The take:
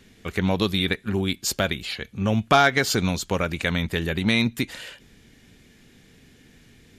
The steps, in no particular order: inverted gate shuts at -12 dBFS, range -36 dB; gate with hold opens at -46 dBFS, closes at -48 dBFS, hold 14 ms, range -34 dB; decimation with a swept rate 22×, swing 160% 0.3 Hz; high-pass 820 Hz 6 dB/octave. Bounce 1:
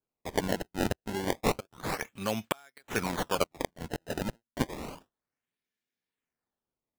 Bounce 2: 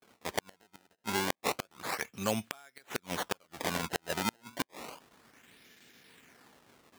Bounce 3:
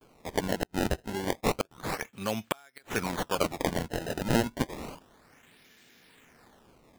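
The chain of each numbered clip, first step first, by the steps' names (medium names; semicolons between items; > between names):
high-pass > inverted gate > decimation with a swept rate > gate with hold; decimation with a swept rate > gate with hold > high-pass > inverted gate; gate with hold > high-pass > decimation with a swept rate > inverted gate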